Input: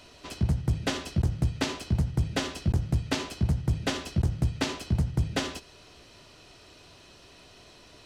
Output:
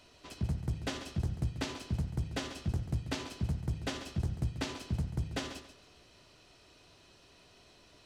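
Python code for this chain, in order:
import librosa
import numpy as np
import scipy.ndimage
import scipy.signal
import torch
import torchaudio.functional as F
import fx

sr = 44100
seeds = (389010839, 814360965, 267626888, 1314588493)

y = fx.echo_feedback(x, sr, ms=138, feedback_pct=28, wet_db=-11.5)
y = F.gain(torch.from_numpy(y), -8.0).numpy()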